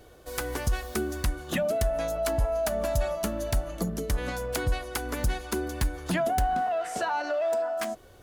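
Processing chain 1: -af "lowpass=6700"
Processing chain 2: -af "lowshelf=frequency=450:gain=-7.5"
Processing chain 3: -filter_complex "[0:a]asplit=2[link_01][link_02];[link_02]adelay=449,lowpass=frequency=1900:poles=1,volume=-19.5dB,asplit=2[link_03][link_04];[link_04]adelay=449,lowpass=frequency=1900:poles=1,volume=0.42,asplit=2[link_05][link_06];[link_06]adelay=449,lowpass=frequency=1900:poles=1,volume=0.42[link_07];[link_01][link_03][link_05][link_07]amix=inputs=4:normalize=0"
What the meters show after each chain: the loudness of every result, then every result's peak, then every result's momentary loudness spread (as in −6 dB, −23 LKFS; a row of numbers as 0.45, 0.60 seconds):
−29.5, −32.5, −29.5 LKFS; −15.5, −15.0, −14.5 dBFS; 6, 6, 6 LU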